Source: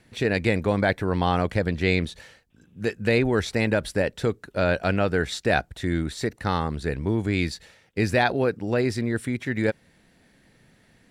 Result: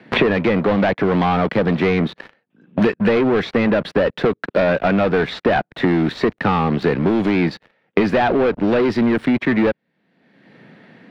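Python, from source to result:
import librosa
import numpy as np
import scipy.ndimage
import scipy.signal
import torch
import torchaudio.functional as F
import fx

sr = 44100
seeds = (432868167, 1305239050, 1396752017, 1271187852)

y = scipy.signal.sosfilt(scipy.signal.butter(4, 160.0, 'highpass', fs=sr, output='sos'), x)
y = fx.leveller(y, sr, passes=5)
y = fx.air_absorb(y, sr, metres=340.0)
y = fx.band_squash(y, sr, depth_pct=100)
y = y * librosa.db_to_amplitude(-4.5)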